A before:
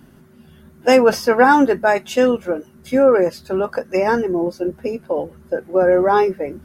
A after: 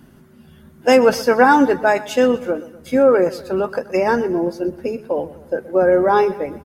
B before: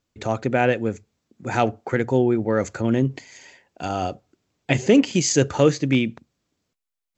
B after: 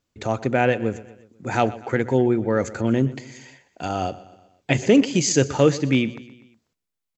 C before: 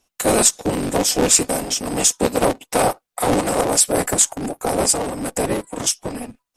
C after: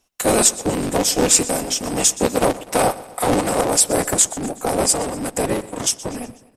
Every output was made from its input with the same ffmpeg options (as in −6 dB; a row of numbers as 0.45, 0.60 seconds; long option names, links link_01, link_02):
-af "aecho=1:1:123|246|369|492:0.126|0.0655|0.034|0.0177"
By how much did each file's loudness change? 0.0, 0.0, 0.0 LU